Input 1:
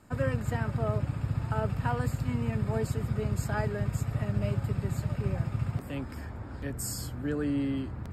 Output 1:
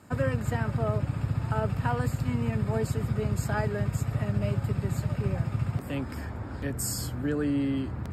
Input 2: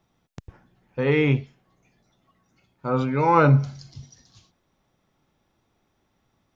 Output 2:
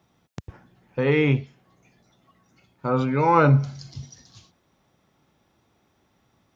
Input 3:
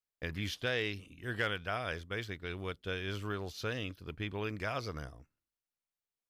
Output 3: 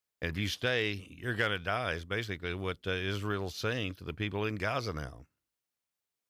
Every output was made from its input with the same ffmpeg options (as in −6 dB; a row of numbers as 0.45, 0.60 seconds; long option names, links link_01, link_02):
-filter_complex "[0:a]highpass=57,asplit=2[link_01][link_02];[link_02]acompressor=threshold=-31dB:ratio=6,volume=0dB[link_03];[link_01][link_03]amix=inputs=2:normalize=0,volume=-1.5dB"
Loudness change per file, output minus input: +2.0, −0.5, +4.0 LU